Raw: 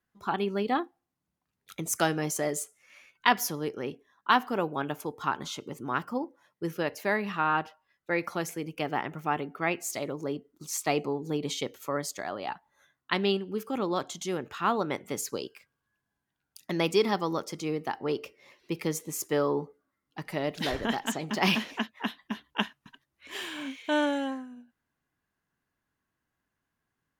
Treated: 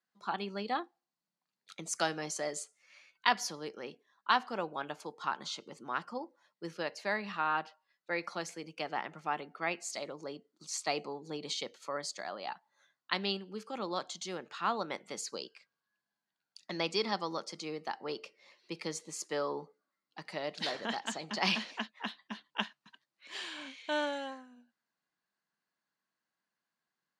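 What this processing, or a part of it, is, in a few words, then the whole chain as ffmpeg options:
television speaker: -filter_complex "[0:a]highpass=f=190:w=0.5412,highpass=f=190:w=1.3066,equalizer=f=270:t=q:w=4:g=-9,equalizer=f=400:t=q:w=4:g=-6,equalizer=f=4400:t=q:w=4:g=9,lowpass=f=8700:w=0.5412,lowpass=f=8700:w=1.3066,asettb=1/sr,asplit=3[s0][s1][s2];[s0]atrim=end=15.354[s3];[s1]atrim=start=15.35:end=17.12,asetpts=PTS-STARTPTS,afade=t=in:d=0.004:c=qsin,afade=t=out:st=1.766:d=0.004:c=qsin,lowpass=7900[s4];[s2]atrim=start=17.116[s5];[s3][s4]acrossfade=d=0.004:c1=hsin:c2=qsin[s6];[s6][s5]acrossfade=d=0.004:c1=qsin:c2=hsin,volume=0.562"

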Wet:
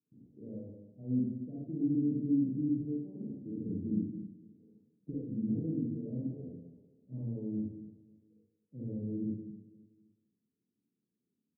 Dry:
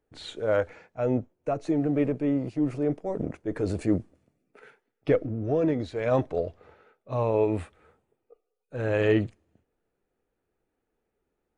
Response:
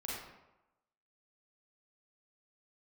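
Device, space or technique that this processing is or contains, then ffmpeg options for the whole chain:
club heard from the street: -filter_complex "[0:a]highpass=f=150:w=0.5412,highpass=f=150:w=1.3066,asettb=1/sr,asplit=3[s0][s1][s2];[s0]atrim=end=2.754[s3];[s1]atrim=start=2.75:end=3.35,asetpts=PTS-STARTPTS,afade=t=in:d=0.004:c=qsin,afade=t=out:st=0.596:d=0.004:c=qsin,equalizer=f=130:w=0.49:g=-11.5[s4];[s2]atrim=start=3.346[s5];[s3][s4]acrossfade=d=0.004:c1=hsin:c2=qsin[s6];[s6][s5]acrossfade=d=0.004:c1=qsin:c2=hsin,alimiter=limit=0.0944:level=0:latency=1:release=334,lowpass=f=240:w=0.5412,lowpass=f=240:w=1.3066[s7];[1:a]atrim=start_sample=2205[s8];[s7][s8]afir=irnorm=-1:irlink=0,aecho=1:1:260|520|780:0.0944|0.0444|0.0209,volume=1.5"

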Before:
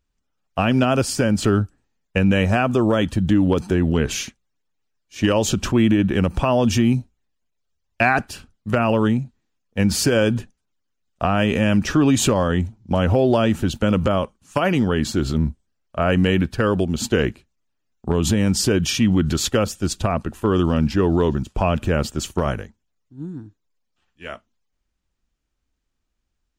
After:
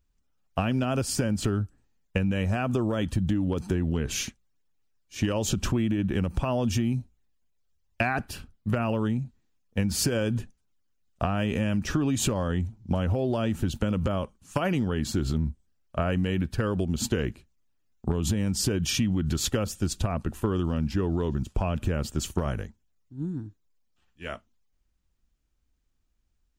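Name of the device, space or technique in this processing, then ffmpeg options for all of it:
ASMR close-microphone chain: -filter_complex "[0:a]asettb=1/sr,asplit=3[s0][s1][s2];[s0]atrim=end=8.074[s3];[s1]atrim=start=8.07:end=8.75,asetpts=PTS-STARTPTS,afade=t=in:d=0.004:c=qsin,afade=t=out:st=0.676:d=0.004:c=qsin,equalizer=f=7200:t=o:w=1.1:g=-5[s4];[s2]atrim=start=8.746[s5];[s3][s4]acrossfade=d=0.004:c1=hsin:c2=qsin[s6];[s6][s5]acrossfade=d=0.004:c1=qsin:c2=hsin,lowshelf=f=190:g=7,acompressor=threshold=0.112:ratio=6,highshelf=f=7900:g=5.5,volume=0.668"

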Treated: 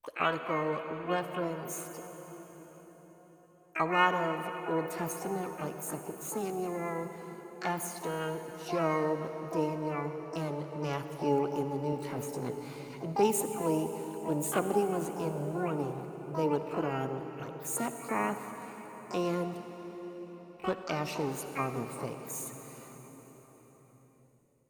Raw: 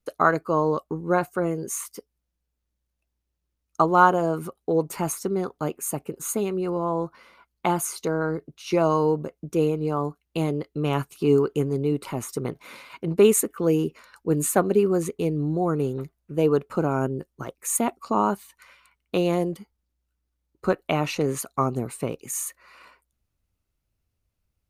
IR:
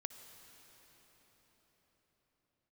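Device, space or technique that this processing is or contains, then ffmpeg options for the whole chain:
shimmer-style reverb: -filter_complex "[0:a]asplit=2[s0][s1];[s1]asetrate=88200,aresample=44100,atempo=0.5,volume=0.501[s2];[s0][s2]amix=inputs=2:normalize=0[s3];[1:a]atrim=start_sample=2205[s4];[s3][s4]afir=irnorm=-1:irlink=0,asettb=1/sr,asplit=3[s5][s6][s7];[s5]atrim=end=11.914[s8];[s6]atrim=start=11.91:end=13.05,asetpts=PTS-STARTPTS,afade=t=in:d=0.004:c=qsin,afade=t=out:st=1.136:d=0.004:c=qsin,asplit=2[s9][s10];[s10]adelay=16,volume=0.447[s11];[s9][s11]amix=inputs=2:normalize=0,atrim=end_sample=50274[s12];[s7]atrim=start=13.046[s13];[s8][s12]acrossfade=d=0.004:c1=hsin:c2=qsin[s14];[s14][s13]acrossfade=d=0.004:c1=qsin:c2=hsin,volume=0.447"

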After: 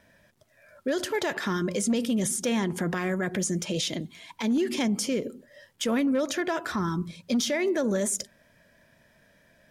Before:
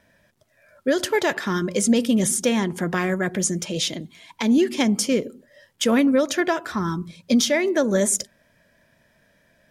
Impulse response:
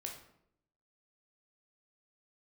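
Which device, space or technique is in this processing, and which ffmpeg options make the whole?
clipper into limiter: -af "asoftclip=type=hard:threshold=0.251,alimiter=limit=0.106:level=0:latency=1:release=68"

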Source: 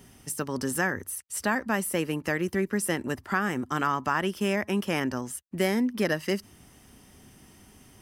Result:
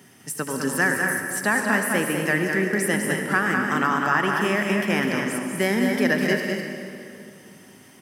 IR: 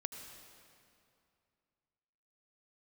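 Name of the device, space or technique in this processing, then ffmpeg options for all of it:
stadium PA: -filter_complex "[0:a]highpass=f=130:w=0.5412,highpass=f=130:w=1.3066,equalizer=f=1800:t=o:w=0.57:g=6,aecho=1:1:204.1|247.8:0.562|0.282[s0];[1:a]atrim=start_sample=2205[s1];[s0][s1]afir=irnorm=-1:irlink=0,volume=1.68"

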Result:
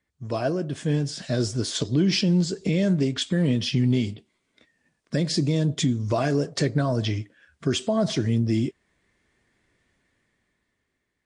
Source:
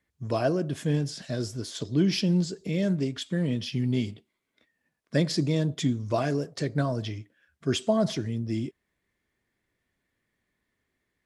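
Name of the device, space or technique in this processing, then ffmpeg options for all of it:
low-bitrate web radio: -filter_complex "[0:a]asettb=1/sr,asplit=3[s0][s1][s2];[s0]atrim=end=4.084[s3];[s1]atrim=start=4.08:end=6.08,asetpts=PTS-STARTPTS,afade=t=in:d=0.004:c=qsin,afade=t=out:st=1.996:d=0.004:c=qsin,equalizer=f=1200:w=0.38:g=-3.5[s4];[s2]atrim=start=6.076[s5];[s3][s4]acrossfade=d=0.004:c1=hsin:c2=qsin[s6];[s6][s5]acrossfade=d=0.004:c1=qsin:c2=hsin,dynaudnorm=f=220:g=13:m=4.22,alimiter=limit=0.224:level=0:latency=1:release=351" -ar 22050 -c:a libmp3lame -b:a 48k

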